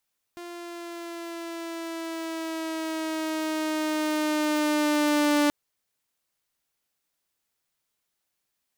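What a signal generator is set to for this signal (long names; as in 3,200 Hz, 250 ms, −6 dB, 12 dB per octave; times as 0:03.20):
pitch glide with a swell saw, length 5.13 s, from 348 Hz, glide −3 semitones, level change +18.5 dB, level −16.5 dB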